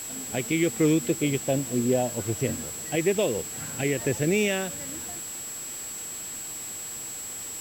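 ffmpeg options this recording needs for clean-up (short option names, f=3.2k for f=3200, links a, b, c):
-af "adeclick=t=4,bandreject=f=7.7k:w=30,afwtdn=0.0089"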